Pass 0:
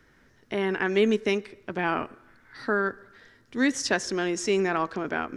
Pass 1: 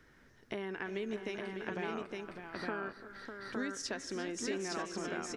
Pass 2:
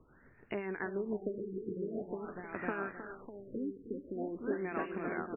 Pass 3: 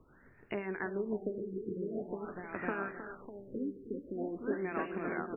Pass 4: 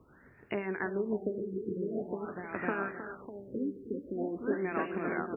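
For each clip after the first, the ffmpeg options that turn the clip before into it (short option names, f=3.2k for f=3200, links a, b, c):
-filter_complex "[0:a]acompressor=threshold=-34dB:ratio=6,asplit=2[a][b];[b]aecho=0:1:340|359|601|862:0.141|0.168|0.398|0.708[c];[a][c]amix=inputs=2:normalize=0,volume=-3dB"
-filter_complex "[0:a]acrossover=split=1800[a][b];[a]aeval=exprs='val(0)*(1-0.5/2+0.5/2*cos(2*PI*7.1*n/s))':c=same[c];[b]aeval=exprs='val(0)*(1-0.5/2-0.5/2*cos(2*PI*7.1*n/s))':c=same[d];[c][d]amix=inputs=2:normalize=0,aecho=1:1:312:0.266,afftfilt=real='re*lt(b*sr/1024,480*pow(2900/480,0.5+0.5*sin(2*PI*0.46*pts/sr)))':imag='im*lt(b*sr/1024,480*pow(2900/480,0.5+0.5*sin(2*PI*0.46*pts/sr)))':win_size=1024:overlap=0.75,volume=3.5dB"
-af "bandreject=f=78.17:t=h:w=4,bandreject=f=156.34:t=h:w=4,bandreject=f=234.51:t=h:w=4,bandreject=f=312.68:t=h:w=4,bandreject=f=390.85:t=h:w=4,bandreject=f=469.02:t=h:w=4,bandreject=f=547.19:t=h:w=4,bandreject=f=625.36:t=h:w=4,bandreject=f=703.53:t=h:w=4,bandreject=f=781.7:t=h:w=4,bandreject=f=859.87:t=h:w=4,volume=1dB"
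-af "highpass=47,volume=3dB"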